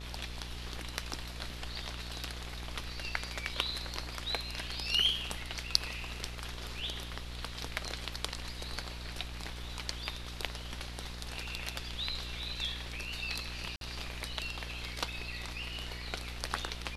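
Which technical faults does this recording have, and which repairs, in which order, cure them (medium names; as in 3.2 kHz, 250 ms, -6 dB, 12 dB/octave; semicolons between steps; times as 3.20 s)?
buzz 60 Hz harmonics 32 -44 dBFS
13.76–13.81 s: dropout 52 ms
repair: de-hum 60 Hz, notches 32; interpolate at 13.76 s, 52 ms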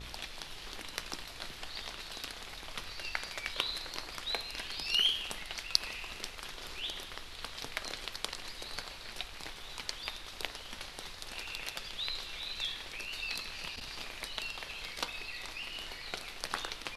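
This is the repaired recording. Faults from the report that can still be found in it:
nothing left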